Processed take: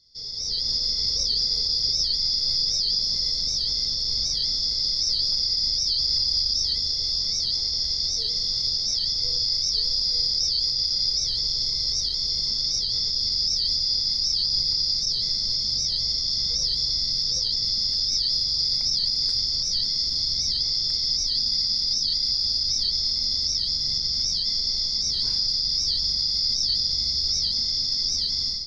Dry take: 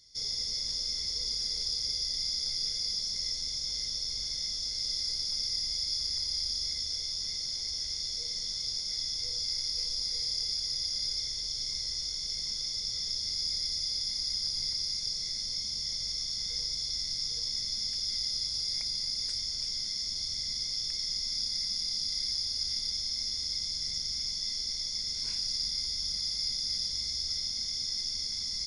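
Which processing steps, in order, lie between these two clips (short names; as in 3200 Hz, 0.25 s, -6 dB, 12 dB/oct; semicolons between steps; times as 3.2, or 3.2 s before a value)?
resonant high shelf 3400 Hz +12 dB, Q 3; reverb RT60 1.4 s, pre-delay 7 ms, DRR 12.5 dB; limiter -6 dBFS, peak gain reduction 5 dB; air absorption 440 m; AGC gain up to 11 dB; record warp 78 rpm, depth 160 cents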